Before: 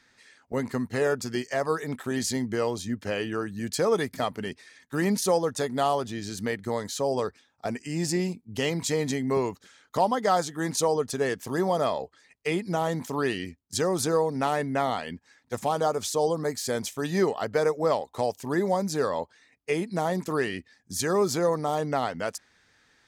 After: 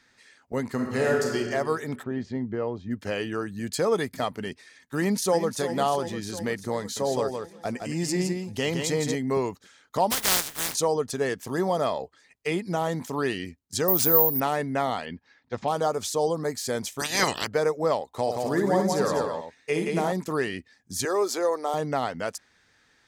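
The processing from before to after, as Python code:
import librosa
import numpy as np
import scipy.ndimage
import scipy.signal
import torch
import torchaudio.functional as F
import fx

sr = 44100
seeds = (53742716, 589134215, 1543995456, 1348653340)

y = fx.reverb_throw(x, sr, start_s=0.73, length_s=0.64, rt60_s=1.5, drr_db=-0.5)
y = fx.spacing_loss(y, sr, db_at_10k=44, at=(2.02, 2.9), fade=0.02)
y = fx.notch(y, sr, hz=5700.0, q=12.0, at=(3.48, 4.16))
y = fx.echo_throw(y, sr, start_s=4.97, length_s=0.63, ms=350, feedback_pct=70, wet_db=-10.5)
y = fx.echo_single(y, sr, ms=164, db=-5.5, at=(6.8, 9.15))
y = fx.spec_flatten(y, sr, power=0.15, at=(10.1, 10.73), fade=0.02)
y = fx.resample_bad(y, sr, factor=3, down='none', up='zero_stuff', at=(13.88, 14.4))
y = fx.lowpass(y, sr, hz=4800.0, slope=24, at=(15.05, 15.68))
y = fx.spec_clip(y, sr, under_db=30, at=(16.99, 17.46), fade=0.02)
y = fx.echo_multitap(y, sr, ms=(60, 174, 264), db=(-6.0, -3.5, -10.0), at=(18.26, 20.11), fade=0.02)
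y = fx.highpass(y, sr, hz=330.0, slope=24, at=(21.05, 21.74))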